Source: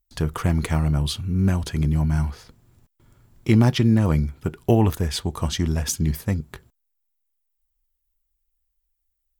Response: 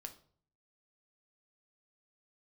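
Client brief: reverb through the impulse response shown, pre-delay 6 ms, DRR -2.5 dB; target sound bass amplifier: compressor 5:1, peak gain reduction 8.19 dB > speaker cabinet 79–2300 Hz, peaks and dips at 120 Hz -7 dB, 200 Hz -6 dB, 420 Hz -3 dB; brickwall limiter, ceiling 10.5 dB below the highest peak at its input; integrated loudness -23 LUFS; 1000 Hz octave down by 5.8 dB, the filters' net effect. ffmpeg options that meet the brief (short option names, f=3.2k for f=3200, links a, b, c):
-filter_complex "[0:a]equalizer=f=1k:t=o:g=-8,alimiter=limit=-16dB:level=0:latency=1,asplit=2[a][b];[1:a]atrim=start_sample=2205,adelay=6[c];[b][c]afir=irnorm=-1:irlink=0,volume=7dB[d];[a][d]amix=inputs=2:normalize=0,acompressor=threshold=-22dB:ratio=5,highpass=f=79:w=0.5412,highpass=f=79:w=1.3066,equalizer=f=120:t=q:w=4:g=-7,equalizer=f=200:t=q:w=4:g=-6,equalizer=f=420:t=q:w=4:g=-3,lowpass=f=2.3k:w=0.5412,lowpass=f=2.3k:w=1.3066,volume=7dB"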